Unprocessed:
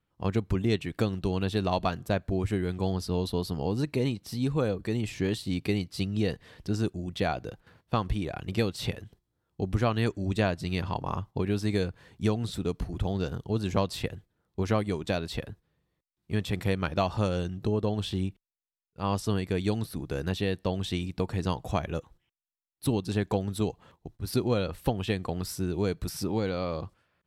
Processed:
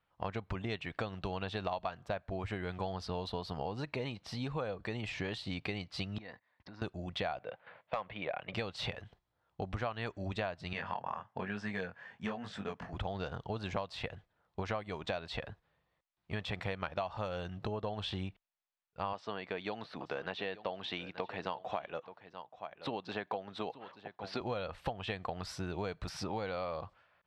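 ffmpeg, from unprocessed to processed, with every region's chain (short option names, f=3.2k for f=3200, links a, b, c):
-filter_complex "[0:a]asettb=1/sr,asplit=3[a][b][c];[a]atrim=end=6.184[d];[b]atrim=start=6.18:end=6.82,asetpts=PTS-STARTPTS,afade=t=in:d=0.004:c=qsin,afade=t=out:st=0.636:d=0.004:c=qsin,agate=range=-28dB:threshold=-48dB:ratio=16:release=100:detection=peak,acompressor=threshold=-39dB:ratio=12:attack=3.2:release=140:knee=1:detection=peak,highpass=130,equalizer=f=150:t=q:w=4:g=-8,equalizer=f=260:t=q:w=4:g=4,equalizer=f=430:t=q:w=4:g=-8,equalizer=f=1k:t=q:w=4:g=5,equalizer=f=2k:t=q:w=4:g=6,equalizer=f=3k:t=q:w=4:g=-9,lowpass=f=4.7k:w=0.5412,lowpass=f=4.7k:w=1.3066[e];[c]atrim=start=6.816[f];[d][e]acrossfade=d=0.004:c1=hsin:c2=qsin[g];[g][f]acrossfade=d=0.004:c1=qsin:c2=hsin,asettb=1/sr,asplit=3[h][i][j];[h]atrim=end=7.394[k];[i]atrim=start=7.39:end=8.54,asetpts=PTS-STARTPTS,afade=t=in:d=0.004:c=qsin,afade=t=out:st=1.146:d=0.004:c=qsin,highpass=180,equalizer=f=240:t=q:w=4:g=-4,equalizer=f=350:t=q:w=4:g=-4,equalizer=f=560:t=q:w=4:g=7,equalizer=f=2.2k:t=q:w=4:g=5,lowpass=f=3.6k:w=0.5412,lowpass=f=3.6k:w=1.3066,volume=19.5dB,asoftclip=hard,volume=-19.5dB[l];[j]atrim=start=8.536[m];[k][l]acrossfade=d=0.004:c1=hsin:c2=qsin[n];[n][m]acrossfade=d=0.004:c1=qsin:c2=hsin,asettb=1/sr,asplit=3[o][p][q];[o]atrim=end=10.734[r];[p]atrim=start=10.73:end=12.93,asetpts=PTS-STARTPTS,afade=t=in:d=0.004:c=qsin,afade=t=out:st=2.196:d=0.004:c=qsin,flanger=delay=19.5:depth=5.4:speed=1.1,highpass=150,equalizer=f=220:t=q:w=4:g=6,equalizer=f=320:t=q:w=4:g=-7,equalizer=f=1.7k:t=q:w=4:g=9,equalizer=f=4k:t=q:w=4:g=-9,lowpass=f=8.9k:w=0.5412,lowpass=f=8.9k:w=1.3066,asoftclip=type=hard:threshold=-18.5dB[s];[q]atrim=start=12.926[t];[r][s]acrossfade=d=0.004:c1=hsin:c2=qsin[u];[u][t]acrossfade=d=0.004:c1=qsin:c2=hsin,asettb=1/sr,asplit=3[v][w][x];[v]atrim=end=19.134[y];[w]atrim=start=19.13:end=24.41,asetpts=PTS-STARTPTS,afade=t=in:d=0.004:c=qsin,afade=t=out:st=5.276:d=0.004:c=qsin,highpass=230,lowpass=4.3k,aecho=1:1:879:0.126,atrim=end_sample=232848[z];[x]atrim=start=24.406[aa];[y][z]acrossfade=d=0.004:c1=hsin:c2=qsin[ab];[ab][aa]acrossfade=d=0.004:c1=qsin:c2=hsin,lowpass=3.5k,lowshelf=f=480:t=q:w=1.5:g=-9,acompressor=threshold=-38dB:ratio=5,volume=3.5dB"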